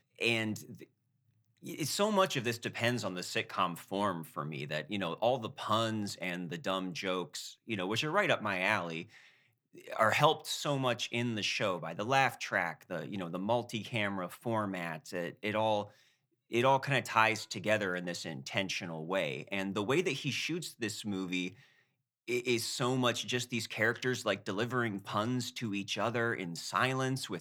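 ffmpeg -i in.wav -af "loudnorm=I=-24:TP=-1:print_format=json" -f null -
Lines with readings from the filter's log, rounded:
"input_i" : "-33.4",
"input_tp" : "-11.6",
"input_lra" : "3.2",
"input_thresh" : "-43.7",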